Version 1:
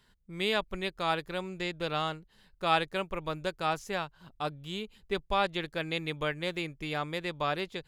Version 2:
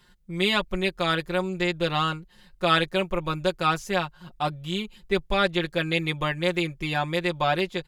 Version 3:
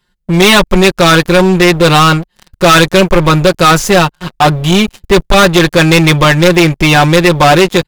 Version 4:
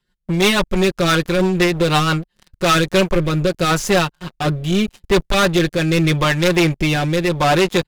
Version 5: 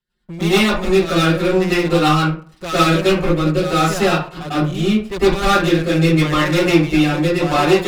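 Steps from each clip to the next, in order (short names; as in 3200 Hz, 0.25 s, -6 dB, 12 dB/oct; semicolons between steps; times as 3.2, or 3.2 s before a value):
comb 5.6 ms, depth 83%; gain +5 dB
sample leveller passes 5; gain +6 dB
rotary speaker horn 6 Hz, later 0.8 Hz, at 2.3; gain -7 dB
reverb RT60 0.40 s, pre-delay 97 ms, DRR -11.5 dB; gain -11.5 dB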